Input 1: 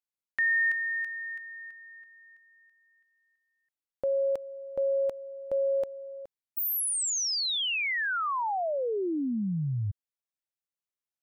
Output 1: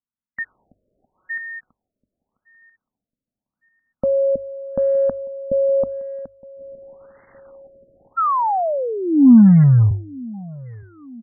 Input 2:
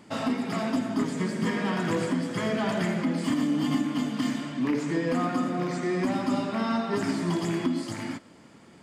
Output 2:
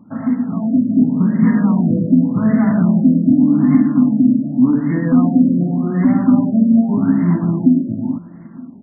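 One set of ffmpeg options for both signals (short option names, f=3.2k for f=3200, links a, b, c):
-filter_complex "[0:a]lowshelf=f=310:t=q:w=3:g=7,bandreject=f=50:t=h:w=6,bandreject=f=100:t=h:w=6,dynaudnorm=f=330:g=5:m=13.5dB,acrusher=bits=6:mode=log:mix=0:aa=0.000001,asplit=2[a][b];[b]adelay=916,lowpass=f=2.2k:p=1,volume=-23dB,asplit=2[c][d];[d]adelay=916,lowpass=f=2.2k:p=1,volume=0.5,asplit=2[e][f];[f]adelay=916,lowpass=f=2.2k:p=1,volume=0.5[g];[a][c][e][g]amix=inputs=4:normalize=0,afftfilt=real='re*lt(b*sr/1024,640*pow(2200/640,0.5+0.5*sin(2*PI*0.86*pts/sr)))':imag='im*lt(b*sr/1024,640*pow(2200/640,0.5+0.5*sin(2*PI*0.86*pts/sr)))':win_size=1024:overlap=0.75,volume=-1dB"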